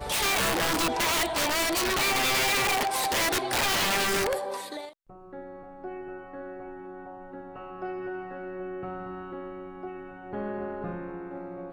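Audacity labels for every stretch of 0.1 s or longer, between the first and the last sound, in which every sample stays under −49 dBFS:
4.930000	5.100000	silence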